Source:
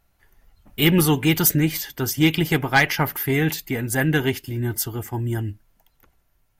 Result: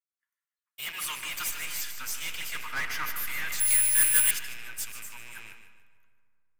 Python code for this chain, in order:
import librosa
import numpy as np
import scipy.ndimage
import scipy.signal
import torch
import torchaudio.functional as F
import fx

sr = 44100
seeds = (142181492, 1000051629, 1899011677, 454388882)

p1 = fx.rattle_buzz(x, sr, strikes_db=-33.0, level_db=-25.0)
p2 = scipy.signal.sosfilt(scipy.signal.butter(12, 1000.0, 'highpass', fs=sr, output='sos'), p1)
p3 = fx.peak_eq(p2, sr, hz=7900.0, db=9.0, octaves=0.72)
p4 = fx.over_compress(p3, sr, threshold_db=-27.0, ratio=-1.0)
p5 = p3 + (p4 * 10.0 ** (-2.0 / 20.0))
p6 = fx.tube_stage(p5, sr, drive_db=17.0, bias=0.7)
p7 = np.clip(p6, -10.0 ** (-21.5 / 20.0), 10.0 ** (-21.5 / 20.0))
p8 = p7 + fx.echo_feedback(p7, sr, ms=150, feedback_pct=49, wet_db=-8.5, dry=0)
p9 = fx.rev_freeverb(p8, sr, rt60_s=4.4, hf_ratio=0.35, predelay_ms=65, drr_db=8.0)
p10 = fx.resample_bad(p9, sr, factor=4, down='filtered', up='zero_stuff', at=(3.6, 4.31))
p11 = fx.band_widen(p10, sr, depth_pct=70)
y = p11 * 10.0 ** (-8.0 / 20.0)